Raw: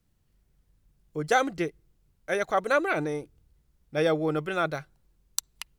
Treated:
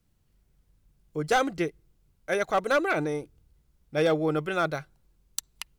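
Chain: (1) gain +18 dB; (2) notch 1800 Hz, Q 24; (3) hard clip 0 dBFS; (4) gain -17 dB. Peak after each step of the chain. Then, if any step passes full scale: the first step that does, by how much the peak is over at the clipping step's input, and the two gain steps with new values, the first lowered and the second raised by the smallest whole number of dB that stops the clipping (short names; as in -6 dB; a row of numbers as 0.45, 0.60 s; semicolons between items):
+10.0, +10.0, 0.0, -17.0 dBFS; step 1, 10.0 dB; step 1 +8 dB, step 4 -7 dB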